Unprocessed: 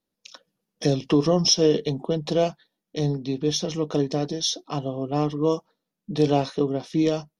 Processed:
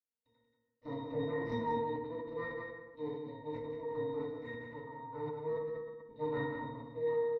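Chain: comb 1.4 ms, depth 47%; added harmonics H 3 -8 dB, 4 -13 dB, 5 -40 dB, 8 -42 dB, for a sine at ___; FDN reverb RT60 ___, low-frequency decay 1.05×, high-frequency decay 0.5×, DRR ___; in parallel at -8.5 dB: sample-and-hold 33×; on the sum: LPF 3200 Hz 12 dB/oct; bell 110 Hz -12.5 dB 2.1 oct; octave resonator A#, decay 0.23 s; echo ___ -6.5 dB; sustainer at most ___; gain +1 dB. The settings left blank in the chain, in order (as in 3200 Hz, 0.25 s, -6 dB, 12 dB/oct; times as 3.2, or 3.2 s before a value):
-6 dBFS, 0.86 s, -5.5 dB, 0.184 s, 41 dB/s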